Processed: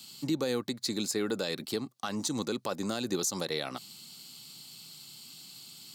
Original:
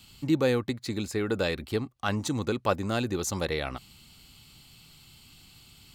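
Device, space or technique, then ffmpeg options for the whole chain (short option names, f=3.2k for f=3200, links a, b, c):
over-bright horn tweeter: -af "highpass=f=150:w=0.5412,highpass=f=150:w=1.3066,highshelf=f=3.4k:t=q:w=1.5:g=7,alimiter=limit=-20.5dB:level=0:latency=1:release=126"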